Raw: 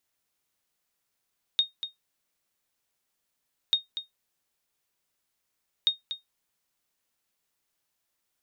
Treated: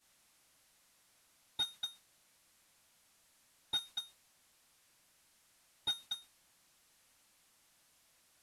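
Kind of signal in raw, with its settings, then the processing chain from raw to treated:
ping with an echo 3,710 Hz, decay 0.15 s, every 2.14 s, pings 3, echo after 0.24 s, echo −11 dB −14 dBFS
linear delta modulator 64 kbit/s, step −39.5 dBFS
downward expander −33 dBFS
parametric band 410 Hz −7.5 dB 0.26 octaves

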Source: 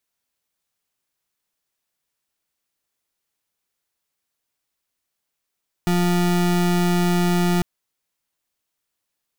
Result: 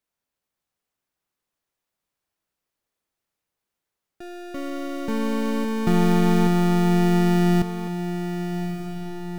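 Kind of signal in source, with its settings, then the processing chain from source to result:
pulse wave 176 Hz, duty 33% −18.5 dBFS 1.75 s
high-shelf EQ 2,000 Hz −8.5 dB
on a send: feedback delay with all-pass diffusion 1,218 ms, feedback 58%, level −9.5 dB
on the sum: delay with pitch and tempo change per echo 423 ms, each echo +4 semitones, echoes 3, each echo −6 dB

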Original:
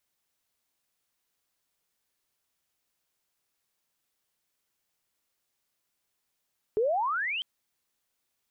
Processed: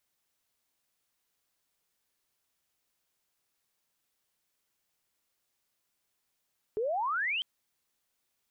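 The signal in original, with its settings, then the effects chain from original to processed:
glide logarithmic 410 Hz → 3,200 Hz −22 dBFS → −29.5 dBFS 0.65 s
brickwall limiter −28 dBFS

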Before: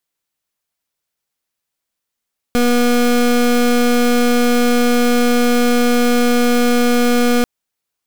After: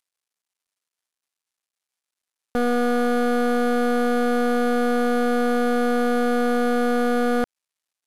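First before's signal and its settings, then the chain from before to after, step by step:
pulse wave 242 Hz, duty 26% −13 dBFS 4.89 s
variable-slope delta modulation 64 kbit/s
low-shelf EQ 420 Hz −10 dB

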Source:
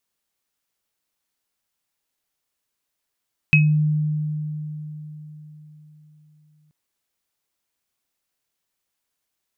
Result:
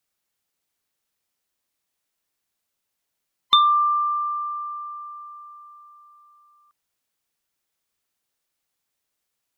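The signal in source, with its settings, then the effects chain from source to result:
inharmonic partials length 3.18 s, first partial 152 Hz, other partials 2,550 Hz, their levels 4 dB, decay 4.24 s, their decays 0.24 s, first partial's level −12 dB
neighbouring bands swapped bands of 1,000 Hz

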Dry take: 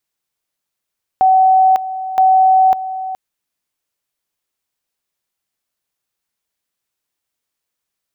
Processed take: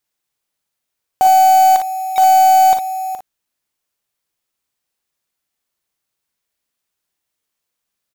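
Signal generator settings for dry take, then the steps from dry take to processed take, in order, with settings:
tone at two levels in turn 756 Hz −7 dBFS, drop 13.5 dB, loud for 0.55 s, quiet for 0.42 s, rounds 2
one scale factor per block 3 bits
on a send: ambience of single reflections 41 ms −10.5 dB, 56 ms −7 dB

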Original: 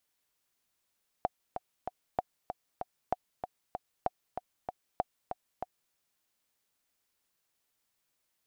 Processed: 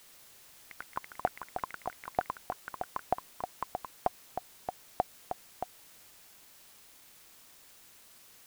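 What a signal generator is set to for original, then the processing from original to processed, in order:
click track 192 BPM, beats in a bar 3, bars 5, 733 Hz, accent 7.5 dB −15 dBFS
in parallel at −9 dB: bit-depth reduction 8 bits, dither triangular
on the sum: delay with pitch and tempo change per echo 90 ms, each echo +6 semitones, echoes 3, each echo −6 dB

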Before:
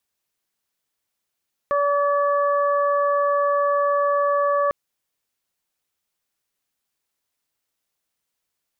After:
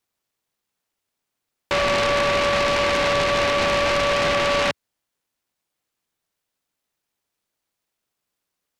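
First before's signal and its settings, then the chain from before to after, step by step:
steady harmonic partials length 3.00 s, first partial 573 Hz, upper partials −1/−13 dB, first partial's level −19.5 dB
high-pass filter 89 Hz 24 dB per octave
short delay modulated by noise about 1,300 Hz, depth 0.15 ms

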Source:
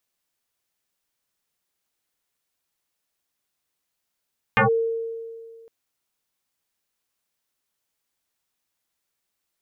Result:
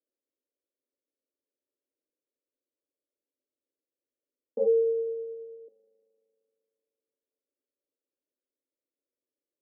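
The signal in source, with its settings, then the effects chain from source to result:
two-operator FM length 1.11 s, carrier 456 Hz, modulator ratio 0.73, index 6.8, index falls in 0.12 s linear, decay 2.04 s, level −13 dB
Chebyshev band-pass filter 250–590 Hz, order 4
spring reverb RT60 2.7 s, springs 38 ms, DRR 16 dB

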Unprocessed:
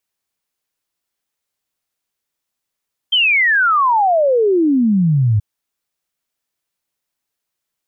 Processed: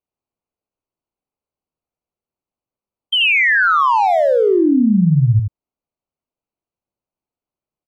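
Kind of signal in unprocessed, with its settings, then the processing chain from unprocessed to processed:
exponential sine sweep 3,200 Hz → 100 Hz 2.28 s −10.5 dBFS
adaptive Wiener filter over 25 samples
on a send: single-tap delay 81 ms −5 dB

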